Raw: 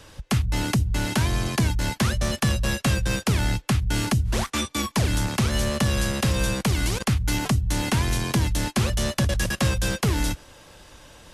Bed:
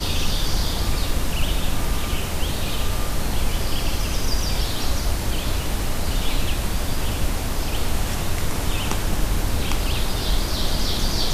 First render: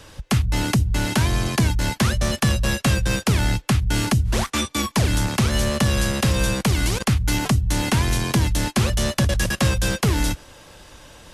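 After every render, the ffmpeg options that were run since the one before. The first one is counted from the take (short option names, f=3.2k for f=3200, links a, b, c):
-af "volume=3dB"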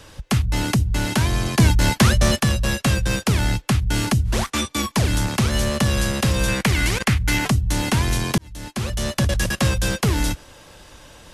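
-filter_complex "[0:a]asplit=3[a][b][c];[a]afade=t=out:st=1.58:d=0.02[d];[b]acontrast=27,afade=t=in:st=1.58:d=0.02,afade=t=out:st=2.37:d=0.02[e];[c]afade=t=in:st=2.37:d=0.02[f];[d][e][f]amix=inputs=3:normalize=0,asettb=1/sr,asplit=3[g][h][i];[g]atrim=end=6.484[j];[h]atrim=start=6.48:end=7.47,asetpts=PTS-STARTPTS,afade=t=in:d=0.004:c=qsin,afade=t=out:st=0.986:d=0.004:c=qsin,equalizer=f=2k:t=o:w=0.97:g=8[k];[i]atrim=start=7.466[l];[j][k]acrossfade=d=0.004:c1=hsin:c2=qsin[m];[m][l]acrossfade=d=0.004:c1=qsin:c2=hsin,asplit=2[n][o];[n]atrim=end=8.38,asetpts=PTS-STARTPTS,afade=t=out:st=8.376:d=0.004:c=hsin[p];[o]atrim=start=8.38,asetpts=PTS-STARTPTS,afade=t=in:d=0.88[q];[p][q]concat=n=2:v=0:a=1"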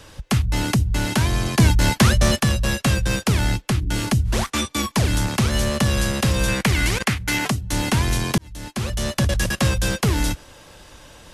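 -filter_complex "[0:a]asplit=3[a][b][c];[a]afade=t=out:st=3.55:d=0.02[d];[b]tremolo=f=230:d=0.462,afade=t=in:st=3.55:d=0.02,afade=t=out:st=4.11:d=0.02[e];[c]afade=t=in:st=4.11:d=0.02[f];[d][e][f]amix=inputs=3:normalize=0,asettb=1/sr,asplit=3[g][h][i];[g]atrim=end=7.074[j];[h]atrim=start=7.07:end=7.73,asetpts=PTS-STARTPTS,afade=t=in:d=0.004:c=qsin,afade=t=out:st=0.656:d=0.004:c=qsin,highpass=f=180:p=1[k];[i]atrim=start=7.726[l];[j][k]acrossfade=d=0.004:c1=hsin:c2=qsin[m];[m][l]acrossfade=d=0.004:c1=qsin:c2=hsin"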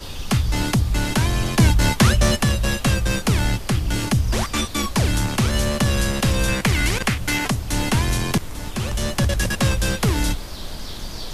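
-filter_complex "[1:a]volume=-10dB[a];[0:a][a]amix=inputs=2:normalize=0"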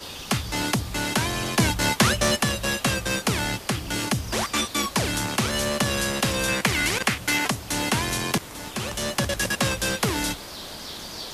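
-af "highpass=f=310:p=1"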